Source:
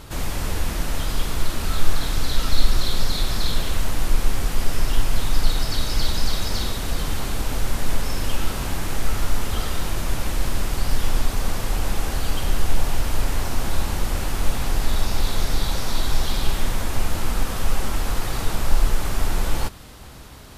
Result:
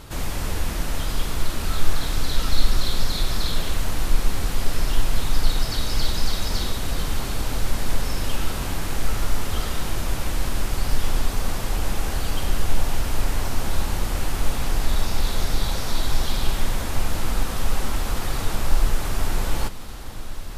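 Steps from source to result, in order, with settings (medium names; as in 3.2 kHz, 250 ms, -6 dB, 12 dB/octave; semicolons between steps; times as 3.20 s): echo that smears into a reverb 1654 ms, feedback 48%, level -13.5 dB; trim -1 dB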